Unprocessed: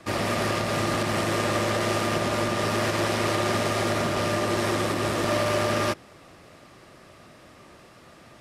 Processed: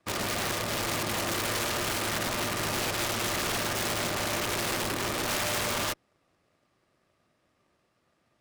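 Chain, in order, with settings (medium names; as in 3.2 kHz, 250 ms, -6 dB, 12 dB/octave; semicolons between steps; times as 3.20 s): integer overflow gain 19.5 dB; Chebyshev shaper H 7 -18 dB, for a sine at -19.5 dBFS; trim -4.5 dB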